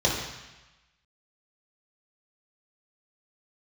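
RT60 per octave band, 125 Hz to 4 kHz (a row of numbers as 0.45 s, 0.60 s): 1.1 s, 1.0 s, 0.95 s, 1.2 s, 1.2 s, 1.1 s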